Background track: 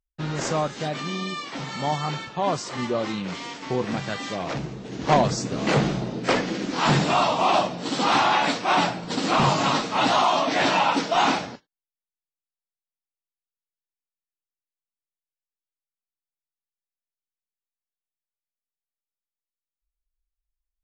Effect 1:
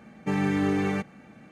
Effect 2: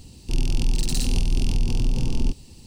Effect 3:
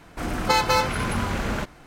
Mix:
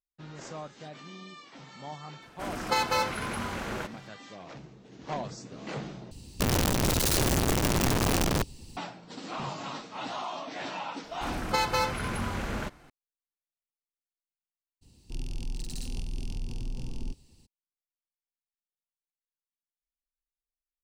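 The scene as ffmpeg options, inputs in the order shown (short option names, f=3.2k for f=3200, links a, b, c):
-filter_complex "[3:a]asplit=2[a][b];[2:a]asplit=2[c][d];[0:a]volume=-16dB[e];[a]lowshelf=f=110:g=-11[f];[c]aeval=exprs='(mod(9.44*val(0)+1,2)-1)/9.44':c=same[g];[e]asplit=2[h][i];[h]atrim=end=6.114[j];[g]atrim=end=2.66,asetpts=PTS-STARTPTS,volume=-1.5dB[k];[i]atrim=start=8.766[l];[f]atrim=end=1.86,asetpts=PTS-STARTPTS,volume=-6dB,afade=t=in:d=0.004:c=hsin,afade=t=out:st=1.856:d=0.004:c=hsin,adelay=2220[m];[b]atrim=end=1.86,asetpts=PTS-STARTPTS,volume=-6.5dB,afade=t=in:d=0.004:c=hsin,afade=t=out:st=1.856:d=0.004:c=hsin,adelay=11040[n];[d]atrim=end=2.66,asetpts=PTS-STARTPTS,volume=-13.5dB,afade=t=in:d=0.02,afade=t=out:st=2.64:d=0.02,adelay=14810[o];[j][k]acrossfade=d=0.004:c1=hsin:c2=hsin[p];[p][l]acrossfade=d=0.004:c1=hsin:c2=hsin[q];[q][m][n][o]amix=inputs=4:normalize=0"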